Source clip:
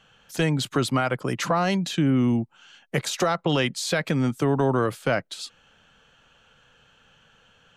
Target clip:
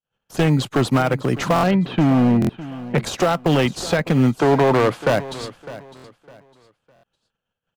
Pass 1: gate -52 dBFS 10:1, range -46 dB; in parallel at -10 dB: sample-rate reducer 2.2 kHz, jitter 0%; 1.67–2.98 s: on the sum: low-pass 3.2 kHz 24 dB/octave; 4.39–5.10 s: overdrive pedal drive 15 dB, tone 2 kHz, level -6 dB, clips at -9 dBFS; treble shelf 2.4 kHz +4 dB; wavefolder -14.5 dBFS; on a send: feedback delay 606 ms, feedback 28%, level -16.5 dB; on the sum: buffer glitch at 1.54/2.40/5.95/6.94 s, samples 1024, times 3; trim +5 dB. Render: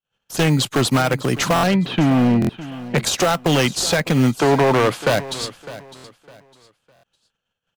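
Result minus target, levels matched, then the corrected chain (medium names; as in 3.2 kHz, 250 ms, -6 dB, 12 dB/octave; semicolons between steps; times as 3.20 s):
4 kHz band +6.0 dB
gate -52 dBFS 10:1, range -46 dB; in parallel at -10 dB: sample-rate reducer 2.2 kHz, jitter 0%; 1.67–2.98 s: on the sum: low-pass 3.2 kHz 24 dB/octave; 4.39–5.10 s: overdrive pedal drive 15 dB, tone 2 kHz, level -6 dB, clips at -9 dBFS; treble shelf 2.4 kHz -6.5 dB; wavefolder -14.5 dBFS; on a send: feedback delay 606 ms, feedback 28%, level -16.5 dB; on the sum: buffer glitch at 1.54/2.40/5.95/6.94 s, samples 1024, times 3; trim +5 dB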